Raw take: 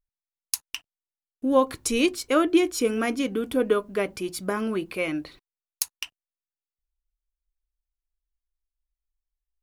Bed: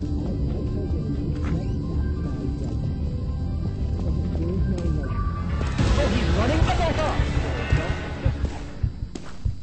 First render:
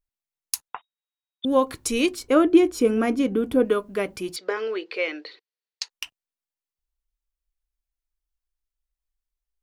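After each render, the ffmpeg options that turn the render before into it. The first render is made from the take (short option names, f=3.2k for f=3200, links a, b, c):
-filter_complex "[0:a]asettb=1/sr,asplit=3[a][b][c];[a]atrim=end=0.684[d];[b]atrim=start=0.68:end=1.45,asetpts=PTS-STARTPTS,afade=t=in:d=0.004:c=qsin,afade=t=out:st=0.766:d=0.004:c=qsin,lowpass=f=3.2k:t=q:w=0.5098,lowpass=f=3.2k:t=q:w=0.6013,lowpass=f=3.2k:t=q:w=0.9,lowpass=f=3.2k:t=q:w=2.563,afreqshift=-3800[e];[c]atrim=start=1.446[f];[d][e]acrossfade=d=0.004:c1=hsin:c2=qsin[g];[g][f]acrossfade=d=0.004:c1=qsin:c2=hsin,asettb=1/sr,asplit=3[h][i][j];[h]atrim=end=2.194[k];[i]atrim=start=2.19:end=3.65,asetpts=PTS-STARTPTS,afade=t=in:d=0.004:c=qsin,afade=t=out:st=1.456:d=0.004:c=qsin,tiltshelf=f=1.3k:g=5[l];[j]atrim=start=3.646[m];[k][l]acrossfade=d=0.004:c1=hsin:c2=qsin[n];[n][m]acrossfade=d=0.004:c1=qsin:c2=hsin,asettb=1/sr,asplit=3[o][p][q];[o]atrim=end=4.364[r];[p]atrim=start=4.36:end=5.9,asetpts=PTS-STARTPTS,afade=t=in:d=0.004:c=qsin,afade=t=out:st=1.536:d=0.004:c=qsin,highpass=f=390:w=0.5412,highpass=f=390:w=1.3066,equalizer=f=460:t=q:w=4:g=9,equalizer=f=660:t=q:w=4:g=-5,equalizer=f=1.1k:t=q:w=4:g=-4,equalizer=f=1.9k:t=q:w=4:g=6,equalizer=f=3.1k:t=q:w=4:g=3,equalizer=f=4.4k:t=q:w=4:g=7,lowpass=f=5.6k:w=0.5412,lowpass=f=5.6k:w=1.3066[s];[q]atrim=start=5.896[t];[r][s]acrossfade=d=0.004:c1=hsin:c2=qsin[u];[u][t]acrossfade=d=0.004:c1=qsin:c2=hsin"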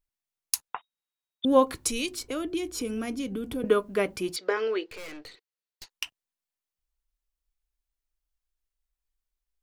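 -filter_complex "[0:a]asettb=1/sr,asplit=3[a][b][c];[a]atrim=end=1.744[d];[b]atrim=start=1.74:end=3.64,asetpts=PTS-STARTPTS,afade=t=in:d=0.004:c=qsin,afade=t=out:st=1.896:d=0.004:c=qsin,acrossover=split=150|3000[e][f][g];[f]acompressor=threshold=-36dB:ratio=3:attack=3.2:release=140:knee=2.83:detection=peak[h];[e][h][g]amix=inputs=3:normalize=0[i];[c]atrim=start=3.636[j];[d][i]acrossfade=d=0.004:c1=hsin:c2=qsin[k];[k][j]acrossfade=d=0.004:c1=qsin:c2=hsin,asettb=1/sr,asplit=3[l][m][n];[l]atrim=end=4.864[o];[m]atrim=start=4.86:end=5.89,asetpts=PTS-STARTPTS,afade=t=in:d=0.004:c=qsin,afade=t=out:st=1.026:d=0.004:c=qsin,aeval=exprs='(tanh(100*val(0)+0.7)-tanh(0.7))/100':c=same[p];[n]atrim=start=5.886[q];[o][p]acrossfade=d=0.004:c1=hsin:c2=qsin[r];[r][q]acrossfade=d=0.004:c1=qsin:c2=hsin"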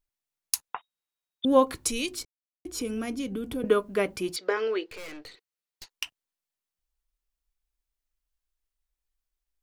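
-filter_complex "[0:a]asplit=3[a][b][c];[a]atrim=end=2.25,asetpts=PTS-STARTPTS,afade=t=out:st=2.246:d=0.004:c=hsin[d];[b]atrim=start=2.25:end=2.65,asetpts=PTS-STARTPTS,volume=0[e];[c]atrim=start=2.65,asetpts=PTS-STARTPTS,afade=t=in:d=0.004:c=hsin[f];[d][e][f]concat=n=3:v=0:a=1"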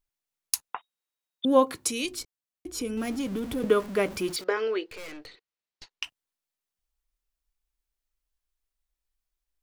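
-filter_complex "[0:a]asettb=1/sr,asplit=3[a][b][c];[a]atrim=end=0.694[d];[b]atrim=start=0.69:end=2.05,asetpts=PTS-STARTPTS,afade=t=in:d=0.004:c=qsin,afade=t=out:st=1.356:d=0.004:c=qsin,highpass=130[e];[c]atrim=start=2.046[f];[d][e]acrossfade=d=0.004:c1=hsin:c2=qsin[g];[g][f]acrossfade=d=0.004:c1=qsin:c2=hsin,asettb=1/sr,asplit=3[h][i][j];[h]atrim=end=2.974[k];[i]atrim=start=2.97:end=4.44,asetpts=PTS-STARTPTS,afade=t=in:d=0.004:c=qsin,afade=t=out:st=1.466:d=0.004:c=qsin,aeval=exprs='val(0)+0.5*0.0133*sgn(val(0))':c=same[l];[j]atrim=start=4.436[m];[k][l]acrossfade=d=0.004:c1=hsin:c2=qsin[n];[n][m]acrossfade=d=0.004:c1=qsin:c2=hsin,asettb=1/sr,asplit=3[o][p][q];[o]atrim=end=5.264[r];[p]atrim=start=5.26:end=6.04,asetpts=PTS-STARTPTS,afade=t=in:d=0.004:c=qsin,afade=t=out:st=0.776:d=0.004:c=qsin,lowpass=5.2k[s];[q]atrim=start=6.036[t];[r][s]acrossfade=d=0.004:c1=hsin:c2=qsin[u];[u][t]acrossfade=d=0.004:c1=qsin:c2=hsin"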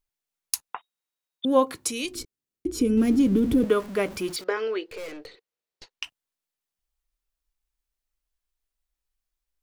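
-filter_complex "[0:a]asettb=1/sr,asplit=3[a][b][c];[a]atrim=end=2.154[d];[b]atrim=start=2.15:end=3.64,asetpts=PTS-STARTPTS,afade=t=in:d=0.004:c=qsin,afade=t=out:st=1.486:d=0.004:c=qsin,lowshelf=f=500:t=q:w=1.5:g=9.5[e];[c]atrim=start=3.636[f];[d][e]acrossfade=d=0.004:c1=hsin:c2=qsin[g];[g][f]acrossfade=d=0.004:c1=qsin:c2=hsin,asettb=1/sr,asplit=3[h][i][j];[h]atrim=end=4.884[k];[i]atrim=start=4.88:end=5.91,asetpts=PTS-STARTPTS,afade=t=in:d=0.004:c=qsin,afade=t=out:st=1.026:d=0.004:c=qsin,equalizer=f=470:t=o:w=0.77:g=9.5[l];[j]atrim=start=5.906[m];[k][l]acrossfade=d=0.004:c1=hsin:c2=qsin[n];[n][m]acrossfade=d=0.004:c1=qsin:c2=hsin"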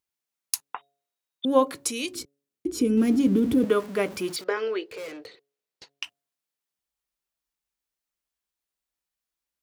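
-af "highpass=110,bandreject=f=140.4:t=h:w=4,bandreject=f=280.8:t=h:w=4,bandreject=f=421.2:t=h:w=4,bandreject=f=561.6:t=h:w=4,bandreject=f=702:t=h:w=4"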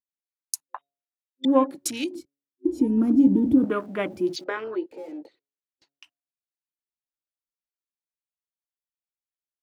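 -af "afwtdn=0.0158,superequalizer=6b=2:7b=0.501"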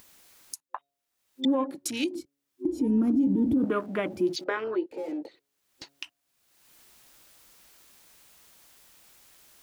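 -af "acompressor=mode=upward:threshold=-27dB:ratio=2.5,alimiter=limit=-17.5dB:level=0:latency=1:release=64"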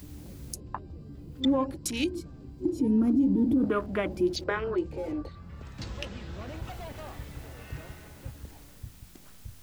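-filter_complex "[1:a]volume=-18.5dB[a];[0:a][a]amix=inputs=2:normalize=0"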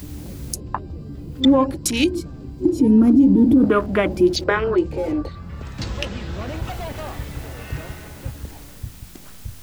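-af "volume=10.5dB"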